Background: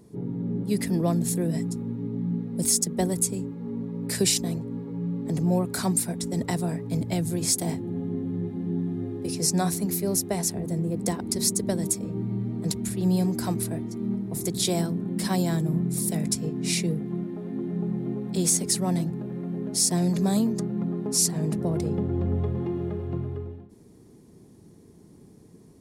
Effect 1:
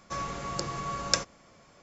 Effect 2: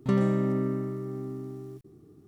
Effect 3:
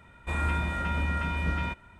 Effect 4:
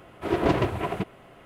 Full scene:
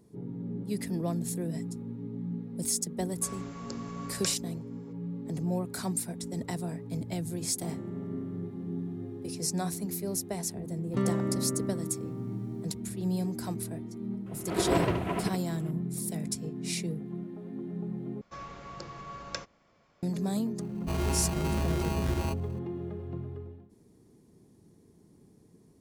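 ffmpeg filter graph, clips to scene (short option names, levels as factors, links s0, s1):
-filter_complex "[1:a]asplit=2[s0][s1];[2:a]asplit=2[s2][s3];[0:a]volume=0.422[s4];[s2]alimiter=limit=0.0944:level=0:latency=1:release=71[s5];[4:a]aecho=1:1:73:0.473[s6];[s1]lowpass=4600[s7];[3:a]acrusher=samples=25:mix=1:aa=0.000001[s8];[s4]asplit=2[s9][s10];[s9]atrim=end=18.214[s11];[s7]atrim=end=1.82,asetpts=PTS-STARTPTS,volume=0.376[s12];[s10]atrim=start=20.026[s13];[s0]atrim=end=1.82,asetpts=PTS-STARTPTS,volume=0.299,afade=t=in:d=0.004:c=hsin,afade=t=out:st=1.816:d=0.004:c=hsin,adelay=3110[s14];[s5]atrim=end=2.27,asetpts=PTS-STARTPTS,volume=0.168,afade=t=in:d=0.004:c=hsin,afade=t=out:st=2.266:d=0.004:c=hsin,adelay=7550[s15];[s3]atrim=end=2.27,asetpts=PTS-STARTPTS,volume=0.631,afade=t=in:d=0.004:c=hsin,afade=t=out:st=2.266:d=0.004:c=hsin,adelay=10880[s16];[s6]atrim=end=1.45,asetpts=PTS-STARTPTS,volume=0.596,afade=t=in:d=0.004:c=hsin,afade=t=out:st=1.446:d=0.004:c=hsin,adelay=14260[s17];[s8]atrim=end=1.99,asetpts=PTS-STARTPTS,volume=0.794,afade=t=in:d=0.004:c=hsin,afade=t=out:st=1.986:d=0.004:c=hsin,adelay=20600[s18];[s11][s12]acrossfade=d=0.004:c1=hsin:c2=hsin[s19];[s19][s13]acrossfade=d=0.004:c1=hsin:c2=hsin[s20];[s20][s14][s15][s16][s17][s18]amix=inputs=6:normalize=0"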